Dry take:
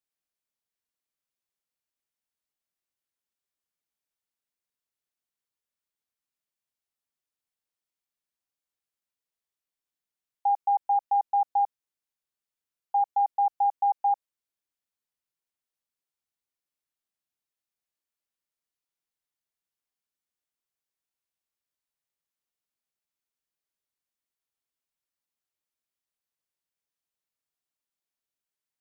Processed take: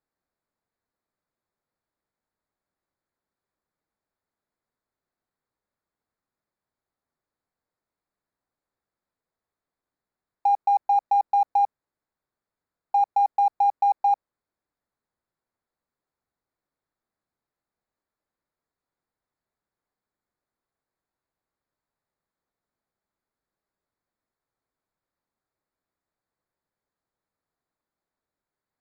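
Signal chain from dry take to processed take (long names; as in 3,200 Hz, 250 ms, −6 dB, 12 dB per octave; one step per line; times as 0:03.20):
adaptive Wiener filter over 15 samples
in parallel at +2 dB: compressor whose output falls as the input rises −30 dBFS, ratio −1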